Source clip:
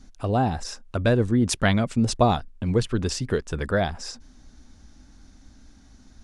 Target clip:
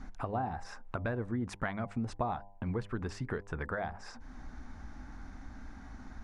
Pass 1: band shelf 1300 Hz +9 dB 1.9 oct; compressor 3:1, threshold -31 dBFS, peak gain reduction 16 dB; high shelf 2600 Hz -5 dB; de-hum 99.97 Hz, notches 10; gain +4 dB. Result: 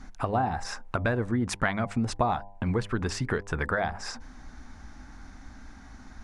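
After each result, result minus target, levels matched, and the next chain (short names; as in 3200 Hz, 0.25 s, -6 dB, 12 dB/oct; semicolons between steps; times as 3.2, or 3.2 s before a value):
compressor: peak gain reduction -7.5 dB; 4000 Hz band +5.5 dB
band shelf 1300 Hz +9 dB 1.9 oct; compressor 3:1, threshold -42 dBFS, peak gain reduction 23 dB; high shelf 2600 Hz -5 dB; de-hum 99.97 Hz, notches 10; gain +4 dB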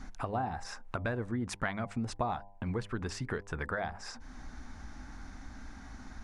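4000 Hz band +6.0 dB
band shelf 1300 Hz +9 dB 1.9 oct; compressor 3:1, threshold -42 dBFS, peak gain reduction 23 dB; high shelf 2600 Hz -14 dB; de-hum 99.97 Hz, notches 10; gain +4 dB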